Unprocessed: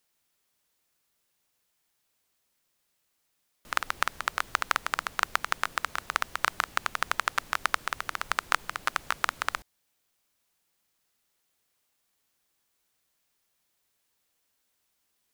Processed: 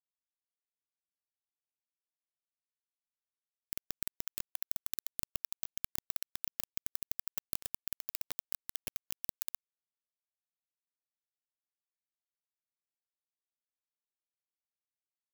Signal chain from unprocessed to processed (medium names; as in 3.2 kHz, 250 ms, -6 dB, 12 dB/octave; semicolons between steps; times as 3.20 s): bit-reversed sample order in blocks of 64 samples; inverse Chebyshev band-stop 430–8700 Hz, stop band 70 dB; treble shelf 5.7 kHz -11.5 dB; peak limiter -33 dBFS, peak gain reduction 8 dB; vibrato 1.3 Hz 34 cents; on a send: frequency-shifting echo 91 ms, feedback 50%, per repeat -34 Hz, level -12 dB; on the sum: bit crusher 7-bit; trim +15 dB